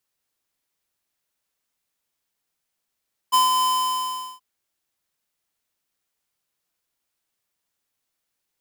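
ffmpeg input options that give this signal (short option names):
-f lavfi -i "aevalsrc='0.168*(2*lt(mod(1020*t,1),0.5)-1)':d=1.077:s=44100,afade=t=in:d=0.023,afade=t=out:st=0.023:d=0.15:silence=0.596,afade=t=out:st=0.31:d=0.767"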